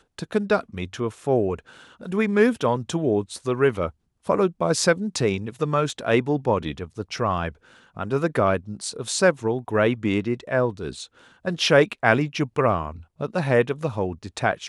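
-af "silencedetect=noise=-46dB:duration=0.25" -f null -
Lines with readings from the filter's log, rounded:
silence_start: 3.91
silence_end: 4.25 | silence_duration: 0.34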